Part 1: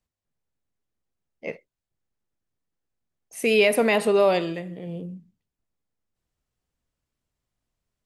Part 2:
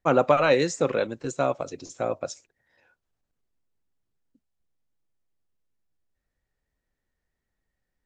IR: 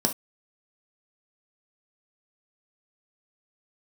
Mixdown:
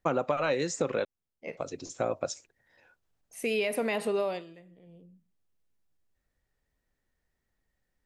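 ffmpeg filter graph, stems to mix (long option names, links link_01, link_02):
-filter_complex "[0:a]volume=-7dB,afade=type=out:start_time=4.21:duration=0.23:silence=0.223872,asplit=2[link_01][link_02];[1:a]volume=1.5dB,asplit=3[link_03][link_04][link_05];[link_03]atrim=end=1.05,asetpts=PTS-STARTPTS,afade=type=out:start_time=1.046:duration=0.004:curve=hsin[link_06];[link_04]atrim=start=1.05:end=1.57,asetpts=PTS-STARTPTS,volume=0[link_07];[link_05]atrim=start=1.57,asetpts=PTS-STARTPTS,afade=type=in:duration=0.004:curve=hsin[link_08];[link_06][link_07][link_08]concat=n=3:v=0:a=1[link_09];[link_02]apad=whole_len=355292[link_10];[link_09][link_10]sidechaincompress=threshold=-38dB:ratio=8:attack=20:release=1100[link_11];[link_01][link_11]amix=inputs=2:normalize=0,acompressor=threshold=-25dB:ratio=6"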